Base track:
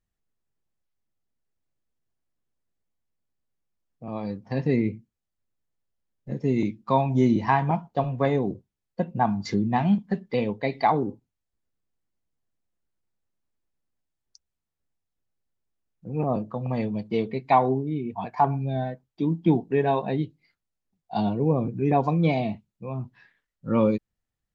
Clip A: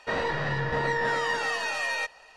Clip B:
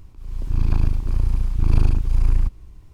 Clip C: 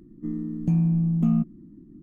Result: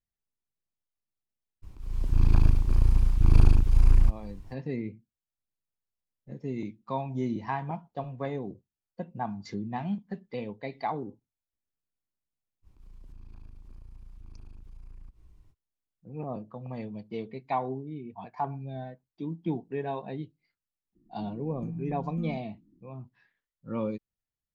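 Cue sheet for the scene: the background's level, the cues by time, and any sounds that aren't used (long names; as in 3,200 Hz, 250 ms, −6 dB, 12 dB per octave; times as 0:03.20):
base track −10.5 dB
0:01.62: mix in B −1.5 dB, fades 0.02 s
0:12.62: mix in B −13.5 dB, fades 0.05 s + downward compressor 4 to 1, threshold −32 dBFS
0:20.95: mix in C −16 dB
not used: A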